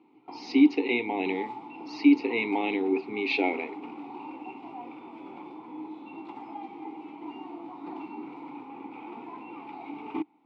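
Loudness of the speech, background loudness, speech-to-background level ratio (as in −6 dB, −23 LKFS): −26.0 LKFS, −41.5 LKFS, 15.5 dB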